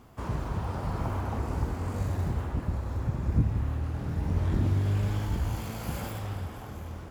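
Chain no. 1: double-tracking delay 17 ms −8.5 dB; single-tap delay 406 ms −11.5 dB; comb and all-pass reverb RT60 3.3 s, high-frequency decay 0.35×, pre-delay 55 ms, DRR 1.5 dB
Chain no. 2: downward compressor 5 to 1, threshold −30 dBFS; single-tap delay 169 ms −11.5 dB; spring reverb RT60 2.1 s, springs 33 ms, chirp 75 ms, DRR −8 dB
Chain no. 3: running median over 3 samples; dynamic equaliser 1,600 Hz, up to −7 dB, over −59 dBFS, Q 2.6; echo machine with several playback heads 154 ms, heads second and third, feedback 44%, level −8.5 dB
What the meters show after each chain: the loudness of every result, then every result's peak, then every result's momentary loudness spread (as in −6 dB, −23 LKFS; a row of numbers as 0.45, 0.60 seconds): −28.5, −27.5, −30.0 LKFS; −11.0, −12.0, −14.0 dBFS; 7, 7, 9 LU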